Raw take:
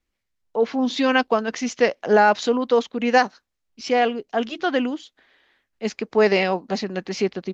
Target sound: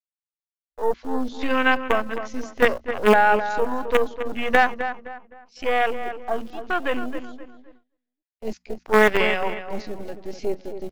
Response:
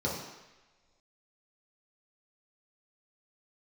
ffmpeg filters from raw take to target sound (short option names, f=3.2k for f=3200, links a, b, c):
-filter_complex "[0:a]acrossover=split=710[a][b];[a]acrusher=bits=3:dc=4:mix=0:aa=0.000001[c];[c][b]amix=inputs=2:normalize=0,lowshelf=f=65:g=2,bandreject=f=60:t=h:w=6,bandreject=f=120:t=h:w=6,bandreject=f=180:t=h:w=6,bandreject=f=240:t=h:w=6,afwtdn=0.0447,highshelf=f=4.2k:g=6.5,asplit=2[d][e];[e]adelay=179,lowpass=f=2.4k:p=1,volume=-9.5dB,asplit=2[f][g];[g]adelay=179,lowpass=f=2.4k:p=1,volume=0.35,asplit=2[h][i];[i]adelay=179,lowpass=f=2.4k:p=1,volume=0.35,asplit=2[j][k];[k]adelay=179,lowpass=f=2.4k:p=1,volume=0.35[l];[f][h][j][l]amix=inputs=4:normalize=0[m];[d][m]amix=inputs=2:normalize=0,atempo=0.69,agate=range=-20dB:threshold=-49dB:ratio=16:detection=peak"